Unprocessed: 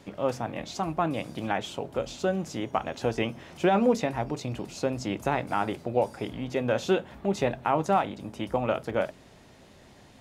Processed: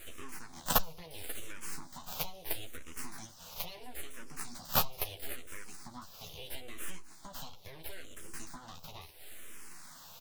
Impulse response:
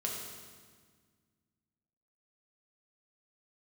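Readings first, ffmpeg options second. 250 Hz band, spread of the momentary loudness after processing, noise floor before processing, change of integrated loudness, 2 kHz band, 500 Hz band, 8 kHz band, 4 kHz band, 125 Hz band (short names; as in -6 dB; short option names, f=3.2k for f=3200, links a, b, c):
-20.5 dB, 19 LU, -54 dBFS, -10.5 dB, -10.0 dB, -21.0 dB, +2.5 dB, -2.5 dB, -15.0 dB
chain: -filter_complex "[0:a]highpass=f=68:w=0.5412,highpass=f=68:w=1.3066,bandreject=f=102.2:t=h:w=4,bandreject=f=204.4:t=h:w=4,bandreject=f=306.6:t=h:w=4,acompressor=threshold=-35dB:ratio=12,aexciter=amount=13.2:drive=4.9:freq=3.2k,aeval=exprs='0.562*(cos(1*acos(clip(val(0)/0.562,-1,1)))-cos(1*PI/2))+0.126*(cos(7*acos(clip(val(0)/0.562,-1,1)))-cos(7*PI/2))':c=same,aeval=exprs='abs(val(0))':c=same,asplit=2[a][b];[b]adelay=12,volume=-4dB[c];[a][c]amix=inputs=2:normalize=0,aecho=1:1:538:0.106,asplit=2[d][e];[e]afreqshift=-0.75[f];[d][f]amix=inputs=2:normalize=1"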